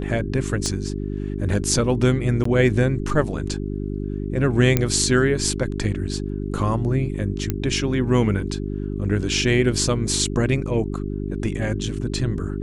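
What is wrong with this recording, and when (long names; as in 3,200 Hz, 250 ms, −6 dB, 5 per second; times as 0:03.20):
mains hum 50 Hz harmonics 8 −27 dBFS
0:00.66: click −13 dBFS
0:02.44–0:02.45: drop-out 14 ms
0:04.77: click −4 dBFS
0:07.50: click −9 dBFS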